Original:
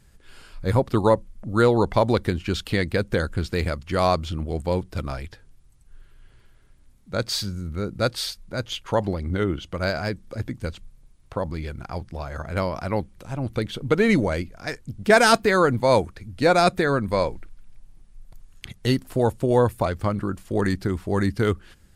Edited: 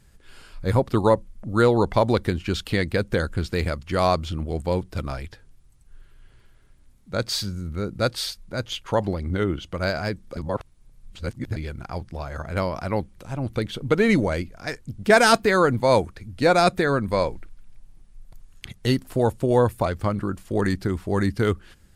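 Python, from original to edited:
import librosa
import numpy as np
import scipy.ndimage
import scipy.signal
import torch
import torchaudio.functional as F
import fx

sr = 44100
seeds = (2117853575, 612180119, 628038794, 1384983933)

y = fx.edit(x, sr, fx.reverse_span(start_s=10.37, length_s=1.19), tone=tone)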